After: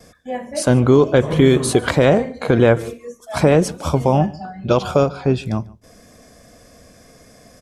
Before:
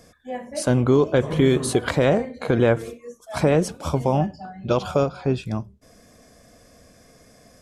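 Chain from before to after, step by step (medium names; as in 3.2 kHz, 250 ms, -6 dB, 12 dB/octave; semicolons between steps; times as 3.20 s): gate with hold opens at -44 dBFS; delay 146 ms -23 dB; trim +5 dB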